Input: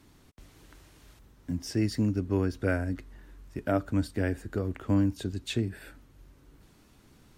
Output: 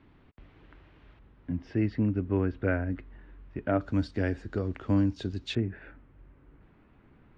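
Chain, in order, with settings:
low-pass filter 2,900 Hz 24 dB per octave, from 0:03.81 5,500 Hz, from 0:05.55 2,400 Hz

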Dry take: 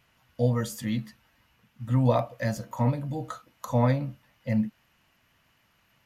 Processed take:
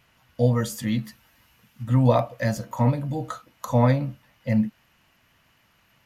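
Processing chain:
0:01.03–0:01.82: high-shelf EQ 7,700 Hz → 4,000 Hz +9 dB
level +4 dB

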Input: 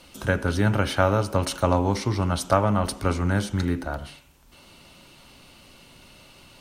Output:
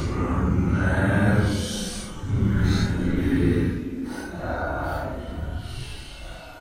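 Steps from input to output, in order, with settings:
wind on the microphone 89 Hz −36 dBFS
far-end echo of a speakerphone 280 ms, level −15 dB
extreme stretch with random phases 6.4×, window 0.05 s, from 0:03.17
level +1.5 dB

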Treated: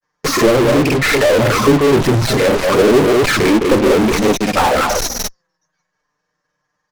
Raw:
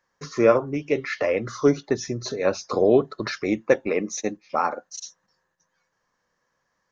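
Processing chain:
stylus tracing distortion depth 0.2 ms
on a send: single-tap delay 197 ms −8.5 dB
on the sum: treble cut that deepens with the level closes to 420 Hz, closed at −14.5 dBFS
granular cloud 100 ms, spray 37 ms, pitch spread up and down by 0 semitones
flanger swept by the level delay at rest 6.7 ms, full sweep at −22 dBFS
in parallel at −6 dB: fuzz pedal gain 50 dB, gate −52 dBFS
on the sum: level +5.5 dB

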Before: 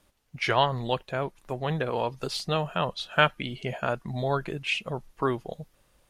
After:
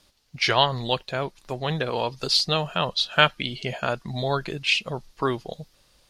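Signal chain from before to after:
parametric band 4,600 Hz +12.5 dB 1.1 octaves
level +1.5 dB

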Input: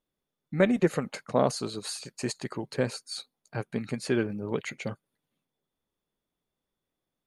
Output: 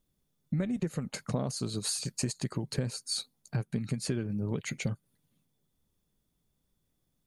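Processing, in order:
bass and treble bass +14 dB, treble +9 dB
downward compressor 12 to 1, threshold −28 dBFS, peak gain reduction 17.5 dB

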